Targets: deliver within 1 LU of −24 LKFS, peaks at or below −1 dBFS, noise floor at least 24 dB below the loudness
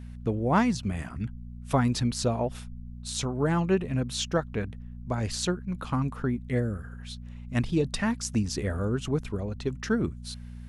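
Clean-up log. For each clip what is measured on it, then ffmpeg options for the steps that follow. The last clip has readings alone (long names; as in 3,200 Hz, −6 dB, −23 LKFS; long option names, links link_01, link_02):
mains hum 60 Hz; hum harmonics up to 240 Hz; level of the hum −39 dBFS; integrated loudness −29.0 LKFS; sample peak −12.0 dBFS; target loudness −24.0 LKFS
→ -af "bandreject=frequency=60:width_type=h:width=4,bandreject=frequency=120:width_type=h:width=4,bandreject=frequency=180:width_type=h:width=4,bandreject=frequency=240:width_type=h:width=4"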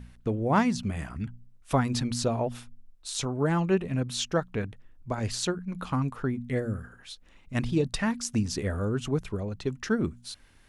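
mains hum none found; integrated loudness −29.5 LKFS; sample peak −12.5 dBFS; target loudness −24.0 LKFS
→ -af "volume=5.5dB"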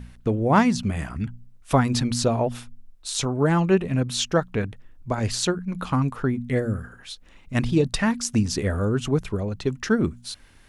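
integrated loudness −24.0 LKFS; sample peak −7.0 dBFS; background noise floor −51 dBFS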